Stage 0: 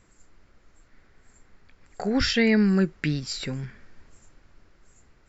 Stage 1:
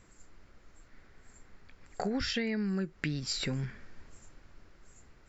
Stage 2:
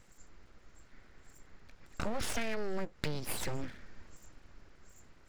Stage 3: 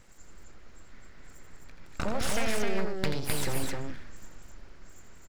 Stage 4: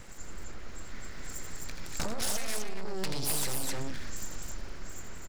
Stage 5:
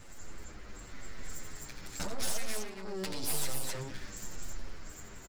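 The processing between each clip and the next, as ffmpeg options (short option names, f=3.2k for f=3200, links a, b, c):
-af "acompressor=threshold=-29dB:ratio=16"
-af "aeval=exprs='abs(val(0))':c=same"
-af "aecho=1:1:84.55|259.5:0.447|0.708,volume=4dB"
-filter_complex "[0:a]acrossover=split=830|4100[a][b][c];[c]dynaudnorm=f=260:g=9:m=10dB[d];[a][b][d]amix=inputs=3:normalize=0,asoftclip=type=tanh:threshold=-26.5dB,acompressor=threshold=-36dB:ratio=6,volume=9dB"
-filter_complex "[0:a]asplit=2[a][b];[b]adelay=8.6,afreqshift=-0.91[c];[a][c]amix=inputs=2:normalize=1"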